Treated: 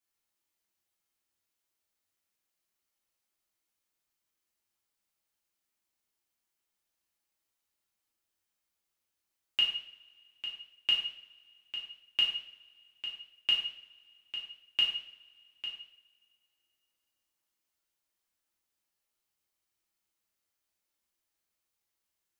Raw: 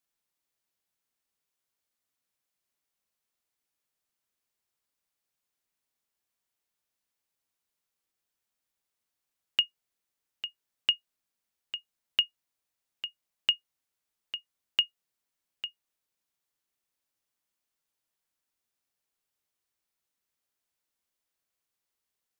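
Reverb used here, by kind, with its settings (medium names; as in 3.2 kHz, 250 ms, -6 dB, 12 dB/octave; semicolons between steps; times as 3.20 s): two-slope reverb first 0.6 s, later 2.6 s, from -25 dB, DRR -4.5 dB; trim -5.5 dB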